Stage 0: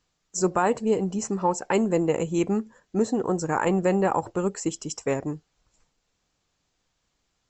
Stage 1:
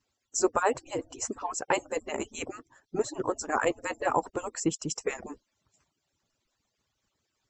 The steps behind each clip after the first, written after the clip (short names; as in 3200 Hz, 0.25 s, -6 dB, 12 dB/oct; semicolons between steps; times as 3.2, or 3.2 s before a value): median-filter separation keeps percussive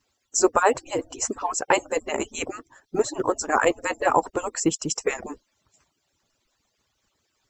bell 140 Hz -4 dB 1.8 oct; short-mantissa float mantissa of 6-bit; gain +7 dB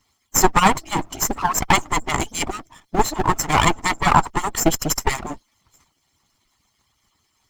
minimum comb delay 0.95 ms; gain +7.5 dB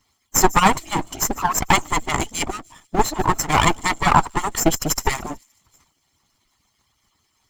thin delay 0.148 s, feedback 43%, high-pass 5600 Hz, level -17 dB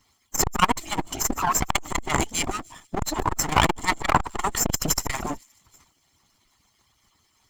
crackling interface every 0.15 s, samples 128, repeat, from 0.49; core saturation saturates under 460 Hz; gain +1.5 dB